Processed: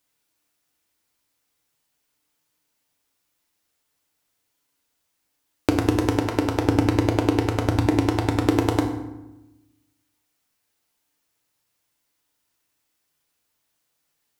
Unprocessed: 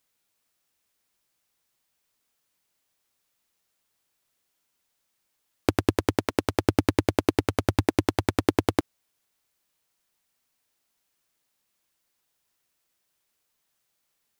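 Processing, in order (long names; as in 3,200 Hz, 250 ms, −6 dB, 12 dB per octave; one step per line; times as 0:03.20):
0:06.15–0:08.46: high-shelf EQ 6,700 Hz −4.5 dB
feedback delay network reverb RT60 0.98 s, low-frequency decay 1.4×, high-frequency decay 0.65×, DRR 2 dB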